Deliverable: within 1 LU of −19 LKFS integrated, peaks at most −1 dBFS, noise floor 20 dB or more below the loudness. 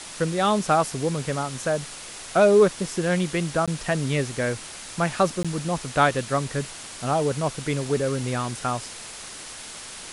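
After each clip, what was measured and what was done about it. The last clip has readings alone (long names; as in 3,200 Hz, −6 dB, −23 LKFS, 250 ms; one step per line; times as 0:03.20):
number of dropouts 2; longest dropout 16 ms; background noise floor −39 dBFS; target noise floor −44 dBFS; integrated loudness −24.0 LKFS; sample peak −7.0 dBFS; target loudness −19.0 LKFS
→ repair the gap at 0:03.66/0:05.43, 16 ms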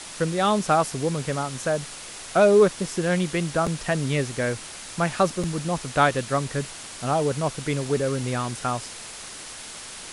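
number of dropouts 0; background noise floor −39 dBFS; target noise floor −44 dBFS
→ broadband denoise 6 dB, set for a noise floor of −39 dBFS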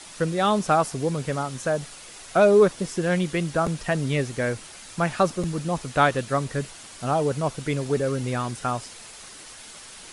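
background noise floor −44 dBFS; target noise floor −45 dBFS
→ broadband denoise 6 dB, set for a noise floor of −44 dBFS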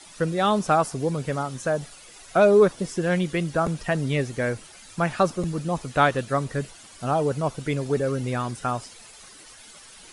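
background noise floor −47 dBFS; integrated loudness −24.5 LKFS; sample peak −7.0 dBFS; target loudness −19.0 LKFS
→ level +5.5 dB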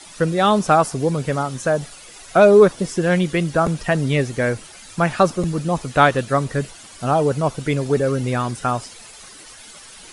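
integrated loudness −19.0 LKFS; sample peak −1.5 dBFS; background noise floor −42 dBFS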